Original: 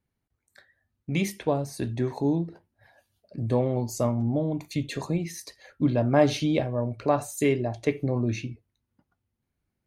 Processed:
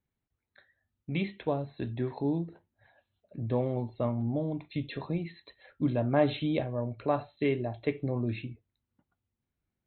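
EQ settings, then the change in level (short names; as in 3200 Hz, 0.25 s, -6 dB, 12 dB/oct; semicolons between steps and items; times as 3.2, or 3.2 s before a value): brick-wall FIR low-pass 4200 Hz; -5.0 dB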